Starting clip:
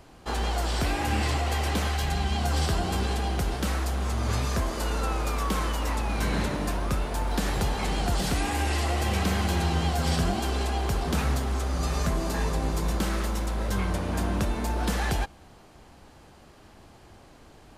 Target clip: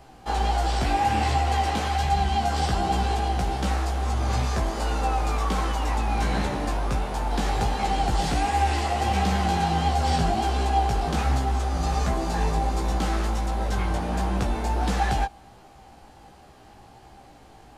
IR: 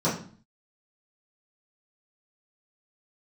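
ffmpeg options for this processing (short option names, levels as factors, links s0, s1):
-filter_complex "[0:a]acrossover=split=9100[s0][s1];[s1]acompressor=threshold=0.00158:ratio=4:attack=1:release=60[s2];[s0][s2]amix=inputs=2:normalize=0,flanger=delay=15:depth=3.5:speed=1.4,equalizer=f=790:t=o:w=0.2:g=11,volume=1.5"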